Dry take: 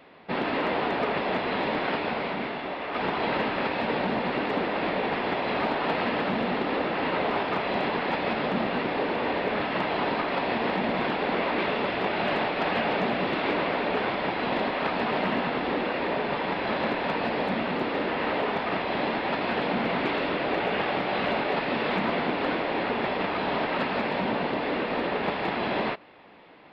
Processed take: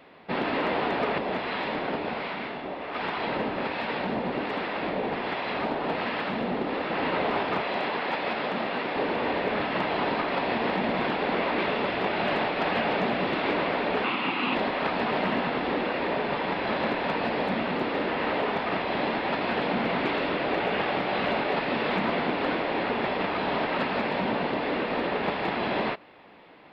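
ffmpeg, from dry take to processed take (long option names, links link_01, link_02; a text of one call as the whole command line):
ffmpeg -i in.wav -filter_complex "[0:a]asettb=1/sr,asplit=3[link_01][link_02][link_03];[link_01]atrim=end=1.184[link_04];[link_02]atrim=start=1.18:end=6.9,asetpts=PTS-STARTPTS,afade=type=in:duration=0.004:curve=qsin,afade=type=out:start_time=5.716:duration=0.004:curve=qsin,acrossover=split=840[link_05][link_06];[link_05]aeval=exprs='val(0)*(1-0.5/2+0.5/2*cos(2*PI*1.3*n/s))':channel_layout=same[link_07];[link_06]aeval=exprs='val(0)*(1-0.5/2-0.5/2*cos(2*PI*1.3*n/s))':channel_layout=same[link_08];[link_07][link_08]amix=inputs=2:normalize=0[link_09];[link_03]atrim=start=6.896[link_10];[link_04][link_09]acrossfade=duration=0.004:curve1=hsin:curve2=qsin[link_11];[link_11][link_10]acrossfade=duration=0.004:curve1=qsin:curve2=hsin,asettb=1/sr,asplit=3[link_12][link_13][link_14];[link_12]atrim=end=7.634[link_15];[link_13]atrim=start=7.63:end=8.96,asetpts=PTS-STARTPTS,afade=type=in:duration=0.004:curve=qsin,afade=type=out:start_time=1.326:duration=0.004:curve=qsin,lowshelf=frequency=260:gain=-10[link_16];[link_14]atrim=start=8.956[link_17];[link_15][link_16]acrossfade=duration=0.004:curve1=hsin:curve2=qsin[link_18];[link_18][link_17]acrossfade=duration=0.004:curve1=qsin:curve2=hsin,asettb=1/sr,asplit=3[link_19][link_20][link_21];[link_19]atrim=end=14.044[link_22];[link_20]atrim=start=14.04:end=14.55,asetpts=PTS-STARTPTS,afade=type=in:duration=0.004:curve=qsin,afade=type=out:start_time=0.506:duration=0.004:curve=qsin,highpass=160,equalizer=frequency=260:width_type=q:width=4:gain=6,equalizer=frequency=440:width_type=q:width=4:gain=-5,equalizer=frequency=630:width_type=q:width=4:gain=-9,equalizer=frequency=1200:width_type=q:width=4:gain=6,equalizer=frequency=1700:width_type=q:width=4:gain=-4,equalizer=frequency=2700:width_type=q:width=4:gain=10,lowpass=frequency=5000:width=0.5412,lowpass=frequency=5000:width=1.3066[link_23];[link_21]atrim=start=14.546[link_24];[link_22][link_23]acrossfade=duration=0.004:curve1=hsin:curve2=qsin[link_25];[link_25][link_24]acrossfade=duration=0.004:curve1=qsin:curve2=hsin" out.wav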